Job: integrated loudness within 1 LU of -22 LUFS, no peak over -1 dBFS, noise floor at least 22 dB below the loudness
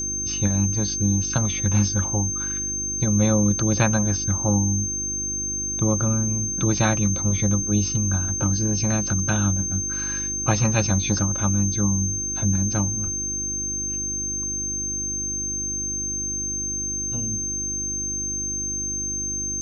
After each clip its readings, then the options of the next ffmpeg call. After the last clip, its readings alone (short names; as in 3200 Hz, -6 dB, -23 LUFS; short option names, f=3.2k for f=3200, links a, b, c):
hum 50 Hz; harmonics up to 350 Hz; hum level -33 dBFS; steady tone 6300 Hz; tone level -25 dBFS; loudness -22.5 LUFS; peak -5.0 dBFS; loudness target -22.0 LUFS
-> -af "bandreject=f=50:t=h:w=4,bandreject=f=100:t=h:w=4,bandreject=f=150:t=h:w=4,bandreject=f=200:t=h:w=4,bandreject=f=250:t=h:w=4,bandreject=f=300:t=h:w=4,bandreject=f=350:t=h:w=4"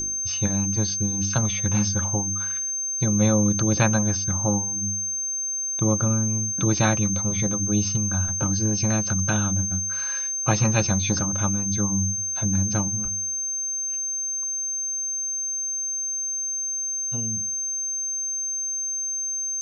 hum none; steady tone 6300 Hz; tone level -25 dBFS
-> -af "bandreject=f=6.3k:w=30"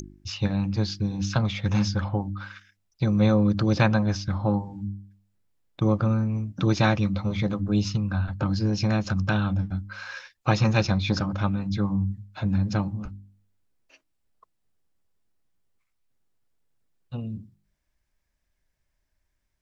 steady tone none; loudness -25.5 LUFS; peak -5.0 dBFS; loudness target -22.0 LUFS
-> -af "volume=3.5dB"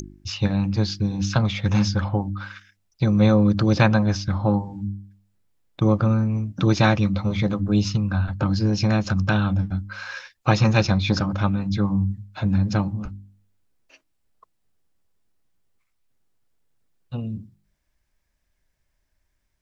loudness -22.0 LUFS; peak -1.5 dBFS; noise floor -73 dBFS